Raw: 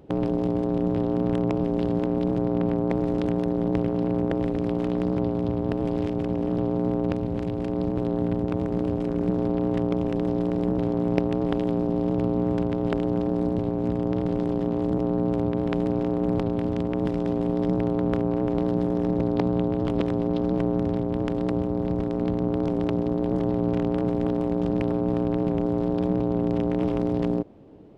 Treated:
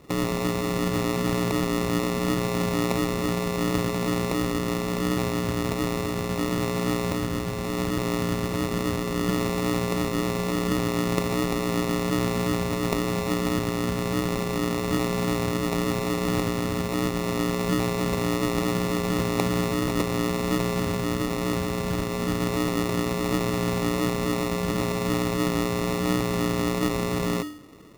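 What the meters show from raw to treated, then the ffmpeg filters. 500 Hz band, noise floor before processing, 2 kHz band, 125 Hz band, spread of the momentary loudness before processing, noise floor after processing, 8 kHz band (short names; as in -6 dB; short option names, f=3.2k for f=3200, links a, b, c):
-1.5 dB, -27 dBFS, +12.5 dB, -0.5 dB, 2 LU, -29 dBFS, n/a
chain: -af "bandreject=f=99.19:t=h:w=4,bandreject=f=198.38:t=h:w=4,bandreject=f=297.57:t=h:w=4,bandreject=f=396.76:t=h:w=4,bandreject=f=495.95:t=h:w=4,bandreject=f=595.14:t=h:w=4,bandreject=f=694.33:t=h:w=4,bandreject=f=793.52:t=h:w=4,bandreject=f=892.71:t=h:w=4,bandreject=f=991.9:t=h:w=4,bandreject=f=1.09109k:t=h:w=4,bandreject=f=1.19028k:t=h:w=4,bandreject=f=1.28947k:t=h:w=4,bandreject=f=1.38866k:t=h:w=4,bandreject=f=1.48785k:t=h:w=4,bandreject=f=1.58704k:t=h:w=4,bandreject=f=1.68623k:t=h:w=4,bandreject=f=1.78542k:t=h:w=4,bandreject=f=1.88461k:t=h:w=4,bandreject=f=1.9838k:t=h:w=4,bandreject=f=2.08299k:t=h:w=4,bandreject=f=2.18218k:t=h:w=4,bandreject=f=2.28137k:t=h:w=4,bandreject=f=2.38056k:t=h:w=4,bandreject=f=2.47975k:t=h:w=4,bandreject=f=2.57894k:t=h:w=4,bandreject=f=2.67813k:t=h:w=4,bandreject=f=2.77732k:t=h:w=4,bandreject=f=2.87651k:t=h:w=4,bandreject=f=2.9757k:t=h:w=4,bandreject=f=3.07489k:t=h:w=4,acrusher=samples=28:mix=1:aa=0.000001"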